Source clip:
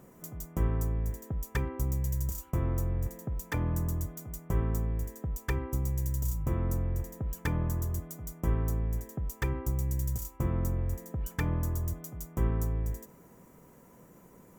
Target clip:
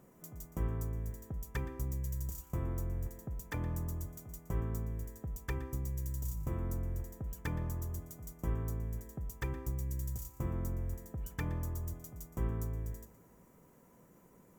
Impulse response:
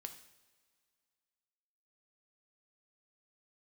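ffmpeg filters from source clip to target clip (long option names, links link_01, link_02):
-filter_complex "[0:a]asplit=2[link_01][link_02];[1:a]atrim=start_sample=2205,asetrate=35721,aresample=44100,adelay=118[link_03];[link_02][link_03]afir=irnorm=-1:irlink=0,volume=-12dB[link_04];[link_01][link_04]amix=inputs=2:normalize=0,volume=-6.5dB"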